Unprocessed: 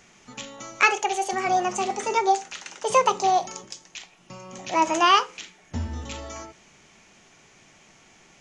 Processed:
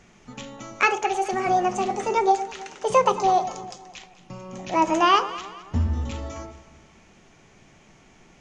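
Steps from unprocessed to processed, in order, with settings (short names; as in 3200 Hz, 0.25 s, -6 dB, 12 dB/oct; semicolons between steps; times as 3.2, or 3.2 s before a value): tilt -2 dB/oct; on a send: echo with dull and thin repeats by turns 0.107 s, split 1100 Hz, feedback 64%, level -12 dB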